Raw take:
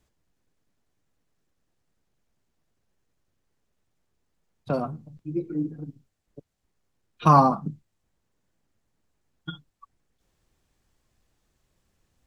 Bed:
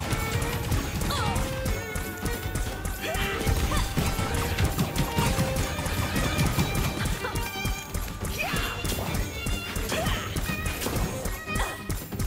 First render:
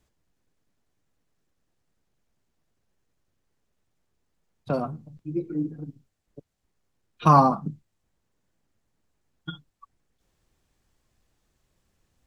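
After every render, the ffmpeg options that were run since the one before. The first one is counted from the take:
-af anull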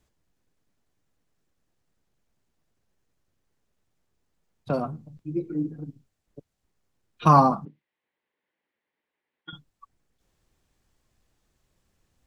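-filter_complex "[0:a]asettb=1/sr,asplit=3[a][b][c];[a]atrim=end=7.654[d];[b]atrim=start=7.65:end=9.53,asetpts=PTS-STARTPTS,afade=t=in:d=0.004:c=qsin,afade=t=out:st=1.876:d=0.004:c=qsin,highpass=450,equalizer=f=680:t=q:w=4:g=-7,equalizer=f=1.3k:t=q:w=4:g=-6,equalizer=f=2k:t=q:w=4:g=6,lowpass=f=3.4k:w=0.5412,lowpass=f=3.4k:w=1.3066[e];[c]atrim=start=9.526[f];[d][e]acrossfade=d=0.004:c1=hsin:c2=qsin[g];[g][f]acrossfade=d=0.004:c1=qsin:c2=hsin"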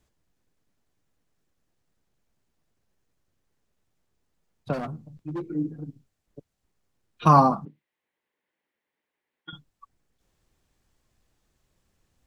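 -filter_complex "[0:a]asplit=3[a][b][c];[a]afade=t=out:st=4.72:d=0.02[d];[b]volume=28dB,asoftclip=hard,volume=-28dB,afade=t=in:st=4.72:d=0.02,afade=t=out:st=5.47:d=0.02[e];[c]afade=t=in:st=5.47:d=0.02[f];[d][e][f]amix=inputs=3:normalize=0"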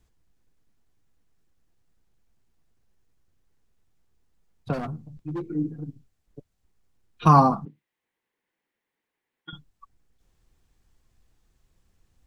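-af "lowshelf=f=79:g=10,bandreject=f=590:w=12"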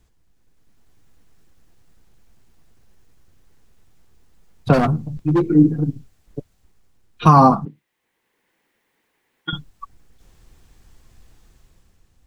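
-af "dynaudnorm=f=110:g=13:m=9dB,alimiter=level_in=6dB:limit=-1dB:release=50:level=0:latency=1"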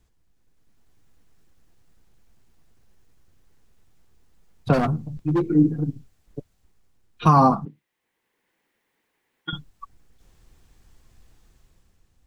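-af "volume=-4.5dB"

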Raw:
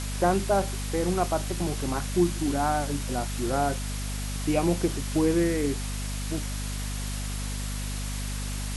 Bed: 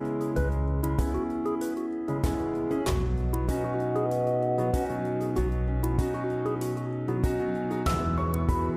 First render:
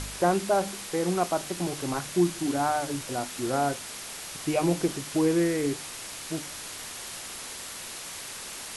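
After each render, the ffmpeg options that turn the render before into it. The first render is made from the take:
-af "bandreject=f=50:t=h:w=4,bandreject=f=100:t=h:w=4,bandreject=f=150:t=h:w=4,bandreject=f=200:t=h:w=4,bandreject=f=250:t=h:w=4,bandreject=f=300:t=h:w=4"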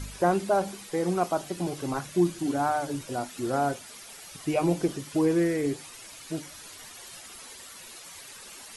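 -af "afftdn=nr=11:nf=-40"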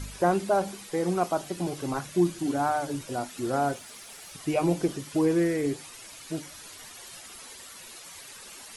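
-filter_complex "[0:a]asettb=1/sr,asplit=3[a][b][c];[a]atrim=end=3.724[d];[b]atrim=start=3.72:end=4.33,asetpts=PTS-STARTPTS,afade=t=in:d=0.004:c=qsin,afade=t=out:st=0.606:d=0.004:c=qsin,aeval=exprs='val(0)*gte(abs(val(0)),0.00168)':c=same[e];[c]atrim=start=4.326[f];[d][e]acrossfade=d=0.004:c1=hsin:c2=qsin[g];[g][f]acrossfade=d=0.004:c1=qsin:c2=hsin"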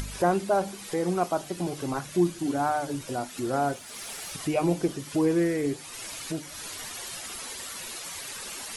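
-af "acompressor=mode=upward:threshold=-29dB:ratio=2.5"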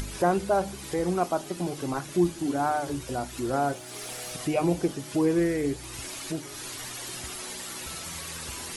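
-filter_complex "[1:a]volume=-19dB[a];[0:a][a]amix=inputs=2:normalize=0"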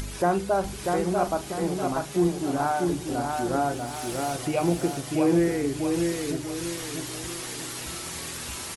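-filter_complex "[0:a]asplit=2[a][b];[b]adelay=41,volume=-13dB[c];[a][c]amix=inputs=2:normalize=0,aecho=1:1:642|1284|1926|2568|3210:0.631|0.259|0.106|0.0435|0.0178"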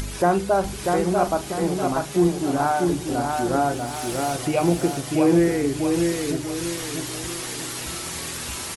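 -af "volume=4dB"

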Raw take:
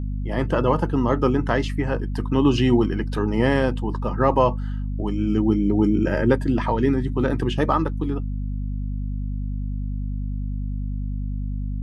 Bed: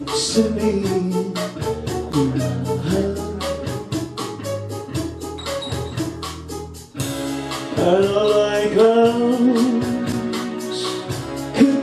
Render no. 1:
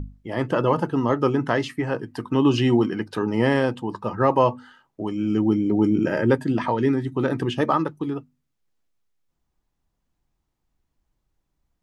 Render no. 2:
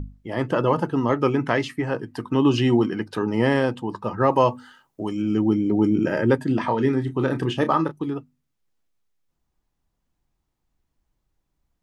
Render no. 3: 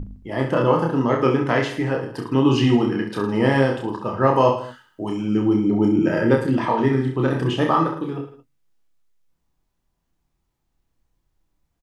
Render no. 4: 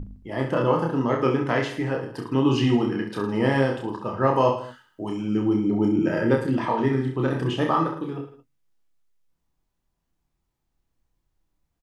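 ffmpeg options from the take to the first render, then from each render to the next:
-af "bandreject=f=50:t=h:w=6,bandreject=f=100:t=h:w=6,bandreject=f=150:t=h:w=6,bandreject=f=200:t=h:w=6,bandreject=f=250:t=h:w=6"
-filter_complex "[0:a]asettb=1/sr,asplit=3[a][b][c];[a]atrim=end=1.094[d];[b]atrim=start=1.09:end=1.62,asetpts=PTS-STARTPTS,afade=t=in:d=0.004:c=qsin,afade=t=out:st=0.526:d=0.004:c=qsin,equalizer=f=2.3k:t=o:w=0.29:g=9.5[e];[c]atrim=start=1.616[f];[d][e]acrossfade=d=0.004:c1=hsin:c2=qsin[g];[g][f]acrossfade=d=0.004:c1=qsin:c2=hsin,asettb=1/sr,asplit=3[h][i][j];[h]atrim=end=4.324[k];[i]atrim=start=4.32:end=5.22,asetpts=PTS-STARTPTS,afade=t=in:d=0.004:c=qsin,afade=t=out:st=0.896:d=0.004:c=qsin,highshelf=f=5.7k:g=11[l];[j]atrim=start=5.216[m];[k][l]acrossfade=d=0.004:c1=hsin:c2=qsin[n];[n][m]acrossfade=d=0.004:c1=qsin:c2=hsin,asettb=1/sr,asplit=3[o][p][q];[o]atrim=end=6.474[r];[p]atrim=start=6.47:end=7.92,asetpts=PTS-STARTPTS,afade=t=in:d=0.004:c=qsin,afade=t=out:st=1.446:d=0.004:c=qsin,asplit=2[s][t];[t]adelay=31,volume=-10dB[u];[s][u]amix=inputs=2:normalize=0,atrim=end_sample=63945[v];[q]atrim=start=7.916[w];[r][v]acrossfade=d=0.004:c1=hsin:c2=qsin[x];[x][w]acrossfade=d=0.004:c1=qsin:c2=hsin"
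-filter_complex "[0:a]asplit=2[a][b];[b]adelay=24,volume=-12.5dB[c];[a][c]amix=inputs=2:normalize=0,aecho=1:1:30|66|109.2|161|223.2:0.631|0.398|0.251|0.158|0.1"
-af "volume=-3.5dB"

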